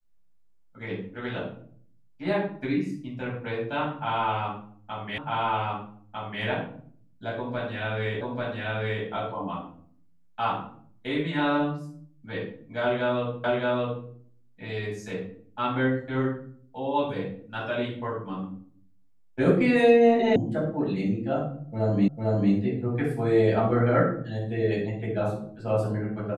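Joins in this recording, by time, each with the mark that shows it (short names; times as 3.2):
5.18 repeat of the last 1.25 s
8.21 repeat of the last 0.84 s
13.44 repeat of the last 0.62 s
20.36 sound cut off
22.08 repeat of the last 0.45 s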